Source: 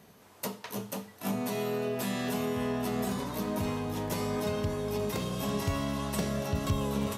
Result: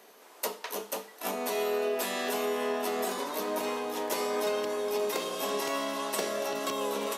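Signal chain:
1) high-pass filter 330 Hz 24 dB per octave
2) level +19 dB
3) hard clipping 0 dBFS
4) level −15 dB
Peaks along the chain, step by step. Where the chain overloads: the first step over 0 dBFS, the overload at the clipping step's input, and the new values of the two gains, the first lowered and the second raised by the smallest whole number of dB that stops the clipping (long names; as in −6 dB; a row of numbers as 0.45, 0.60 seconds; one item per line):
−21.0, −2.0, −2.0, −17.0 dBFS
no step passes full scale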